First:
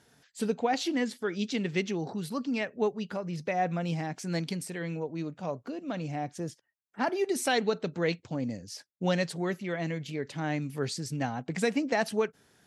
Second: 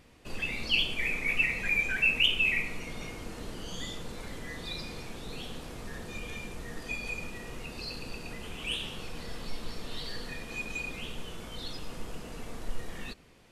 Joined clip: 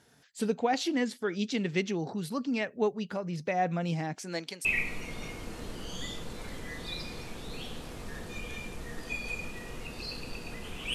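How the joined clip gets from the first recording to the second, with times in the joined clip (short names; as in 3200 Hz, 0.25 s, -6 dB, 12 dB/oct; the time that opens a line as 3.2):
first
4.14–4.65 HPF 210 Hz -> 630 Hz
4.65 switch to second from 2.44 s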